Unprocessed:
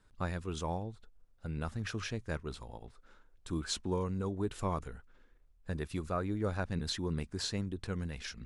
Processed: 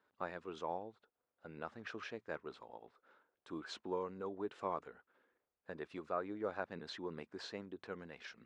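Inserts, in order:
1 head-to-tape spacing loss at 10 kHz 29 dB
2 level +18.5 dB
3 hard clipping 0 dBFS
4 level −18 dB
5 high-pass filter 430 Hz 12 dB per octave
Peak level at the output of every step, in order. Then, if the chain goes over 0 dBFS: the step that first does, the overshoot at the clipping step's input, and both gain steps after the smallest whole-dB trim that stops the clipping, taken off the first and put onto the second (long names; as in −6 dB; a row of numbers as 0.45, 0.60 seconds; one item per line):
−23.5, −5.0, −5.0, −23.0, −23.5 dBFS
no step passes full scale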